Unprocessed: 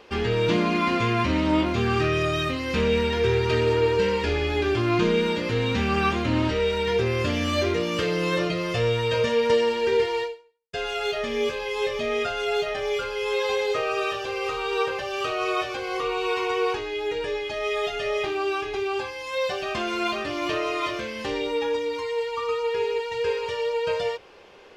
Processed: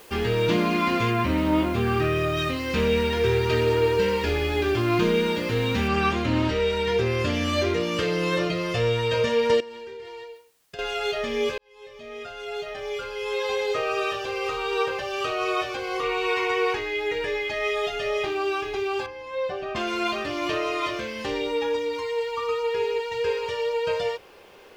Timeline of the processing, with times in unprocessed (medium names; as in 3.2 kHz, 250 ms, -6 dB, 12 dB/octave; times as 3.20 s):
1.11–2.37 s: low-pass 2.8 kHz 6 dB/octave
5.88 s: noise floor step -52 dB -67 dB
9.60–10.79 s: compression 10:1, threshold -36 dBFS
11.58–13.91 s: fade in
16.03–17.71 s: peaking EQ 2 kHz +9 dB 0.43 oct
19.06–19.76 s: low-pass 1 kHz 6 dB/octave